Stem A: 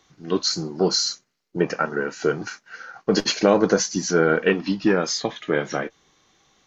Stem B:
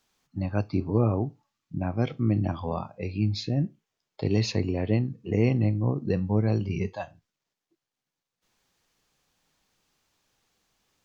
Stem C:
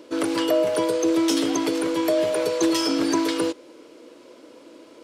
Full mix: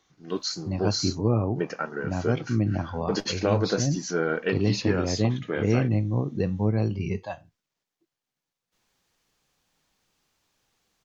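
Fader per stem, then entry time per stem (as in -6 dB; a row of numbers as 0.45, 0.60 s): -7.5 dB, 0.0 dB, off; 0.00 s, 0.30 s, off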